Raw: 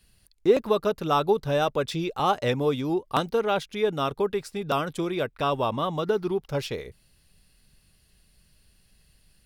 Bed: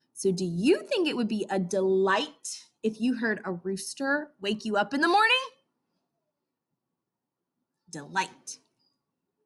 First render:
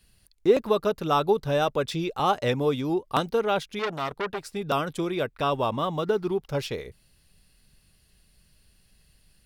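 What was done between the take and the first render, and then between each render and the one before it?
3.79–4.44 core saturation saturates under 2000 Hz; 5.56–6.4 median filter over 5 samples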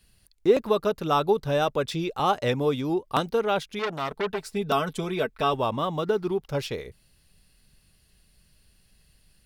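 4.11–5.54 comb 4.6 ms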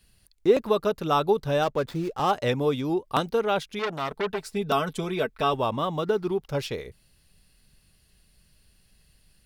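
1.63–2.31 median filter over 15 samples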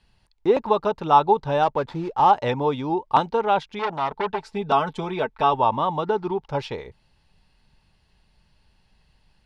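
LPF 4400 Hz 12 dB/oct; bell 890 Hz +14.5 dB 0.4 oct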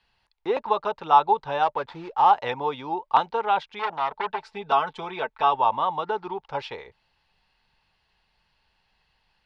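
three-band isolator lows -13 dB, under 520 Hz, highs -13 dB, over 5000 Hz; notch 600 Hz, Q 14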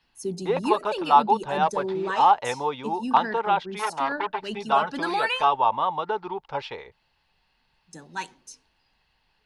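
add bed -4.5 dB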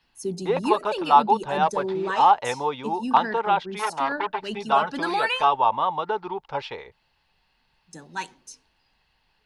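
gain +1 dB

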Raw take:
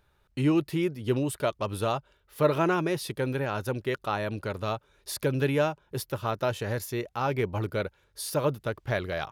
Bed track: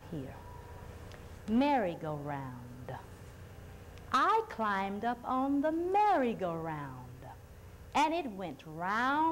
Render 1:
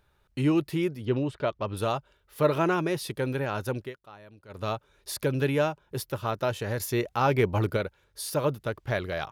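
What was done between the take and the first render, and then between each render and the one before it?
1.05–1.77 air absorption 160 m; 3.78–4.64 dip -19 dB, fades 0.16 s; 6.8–7.77 gain +4.5 dB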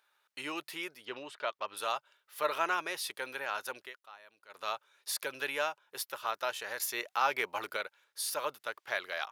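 HPF 1000 Hz 12 dB/oct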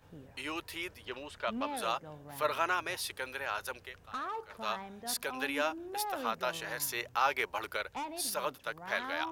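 add bed track -10.5 dB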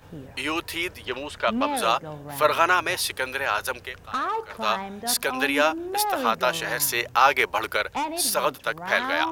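gain +11.5 dB

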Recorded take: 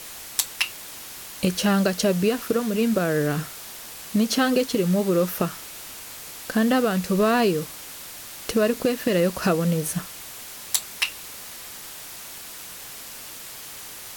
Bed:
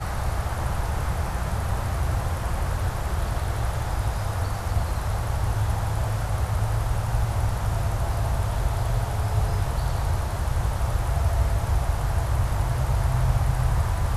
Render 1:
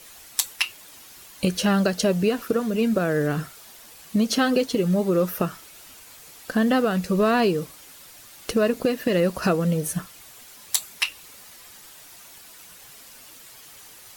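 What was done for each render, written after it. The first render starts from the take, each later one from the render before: denoiser 9 dB, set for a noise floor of -39 dBFS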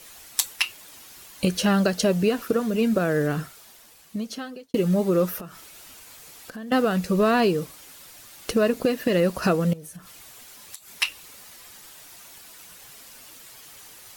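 3.18–4.74 fade out; 5.4–6.72 compressor 3:1, threshold -39 dBFS; 9.73–10.96 compressor 8:1, threshold -38 dBFS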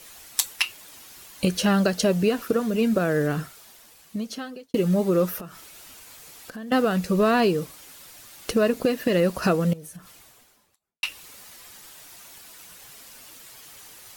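9.85–11.03 studio fade out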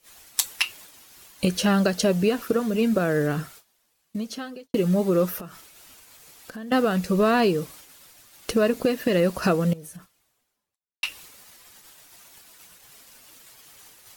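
gate -45 dBFS, range -18 dB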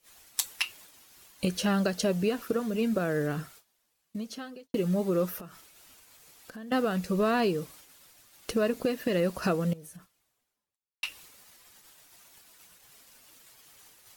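gain -6 dB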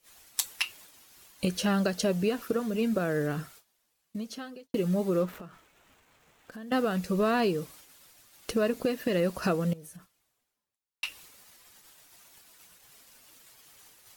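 5.19–6.52 median filter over 9 samples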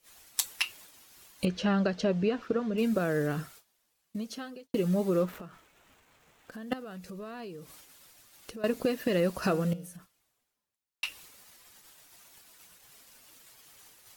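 1.45–2.78 air absorption 160 m; 6.73–8.64 compressor 3:1, threshold -45 dBFS; 9.41–9.95 de-hum 178.4 Hz, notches 33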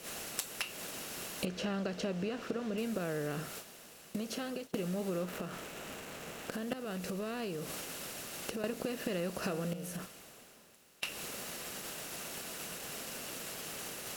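per-bin compression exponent 0.6; compressor 3:1, threshold -37 dBFS, peak gain reduction 12.5 dB

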